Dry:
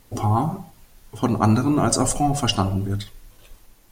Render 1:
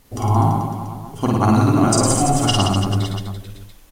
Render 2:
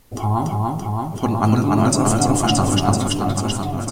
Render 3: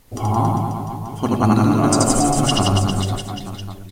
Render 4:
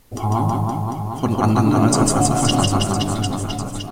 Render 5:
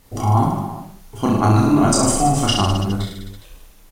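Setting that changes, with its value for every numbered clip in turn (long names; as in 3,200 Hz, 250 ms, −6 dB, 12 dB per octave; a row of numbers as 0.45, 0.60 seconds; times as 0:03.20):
reverse bouncing-ball delay, first gap: 50, 290, 80, 150, 30 milliseconds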